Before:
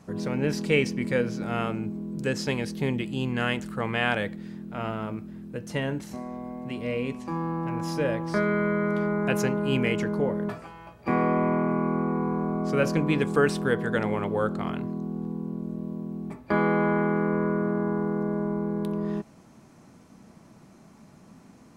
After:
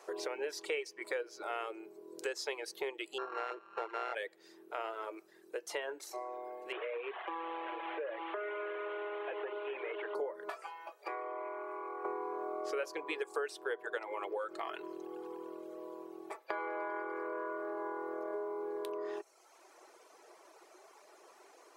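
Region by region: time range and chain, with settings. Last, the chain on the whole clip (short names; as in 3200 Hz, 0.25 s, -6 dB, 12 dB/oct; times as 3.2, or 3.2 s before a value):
3.18–4.15 sample sorter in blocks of 32 samples + LPF 1600 Hz
6.72–10.15 delta modulation 16 kbps, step -34 dBFS + HPF 280 Hz + compressor 5:1, threshold -32 dBFS
10.98–12.05 HPF 400 Hz + compressor 4:1, threshold -37 dBFS
13.97–18.34 comb 6.1 ms, depth 43% + compressor, threshold -24 dBFS + thin delay 99 ms, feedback 81%, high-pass 1700 Hz, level -17 dB
whole clip: elliptic high-pass 370 Hz, stop band 40 dB; reverb removal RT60 0.92 s; compressor 4:1, threshold -39 dBFS; gain +2.5 dB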